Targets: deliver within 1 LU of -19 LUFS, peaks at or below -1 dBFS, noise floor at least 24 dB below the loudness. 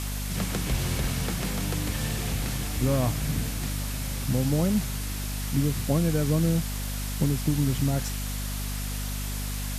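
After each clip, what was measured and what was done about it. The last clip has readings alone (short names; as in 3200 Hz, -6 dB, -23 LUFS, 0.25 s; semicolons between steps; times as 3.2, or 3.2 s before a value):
hum 50 Hz; harmonics up to 250 Hz; hum level -29 dBFS; noise floor -31 dBFS; noise floor target -52 dBFS; loudness -28.0 LUFS; peak -11.0 dBFS; loudness target -19.0 LUFS
-> notches 50/100/150/200/250 Hz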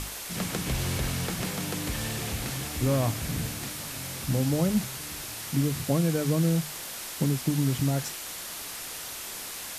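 hum none; noise floor -38 dBFS; noise floor target -53 dBFS
-> denoiser 15 dB, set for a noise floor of -38 dBFS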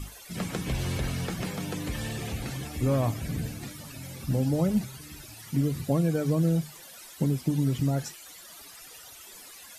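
noise floor -48 dBFS; noise floor target -54 dBFS
-> denoiser 6 dB, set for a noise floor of -48 dBFS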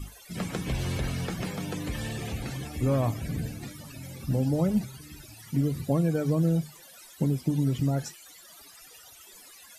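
noise floor -51 dBFS; noise floor target -53 dBFS
-> denoiser 6 dB, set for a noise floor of -51 dBFS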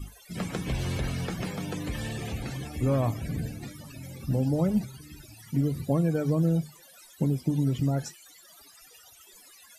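noise floor -54 dBFS; loudness -29.5 LUFS; peak -12.5 dBFS; loudness target -19.0 LUFS
-> gain +10.5 dB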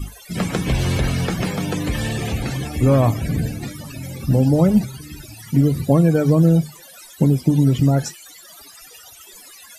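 loudness -19.0 LUFS; peak -2.0 dBFS; noise floor -44 dBFS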